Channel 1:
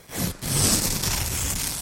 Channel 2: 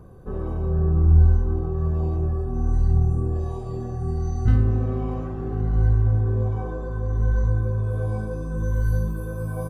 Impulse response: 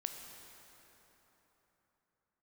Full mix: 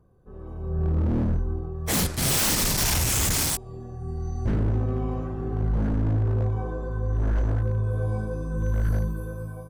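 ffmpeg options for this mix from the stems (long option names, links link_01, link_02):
-filter_complex "[0:a]agate=range=-44dB:threshold=-38dB:ratio=16:detection=peak,adelay=1750,volume=2dB[link_01];[1:a]volume=-15dB[link_02];[link_01][link_02]amix=inputs=2:normalize=0,dynaudnorm=framelen=290:gausssize=5:maxgain=14dB,aeval=exprs='0.133*(abs(mod(val(0)/0.133+3,4)-2)-1)':channel_layout=same"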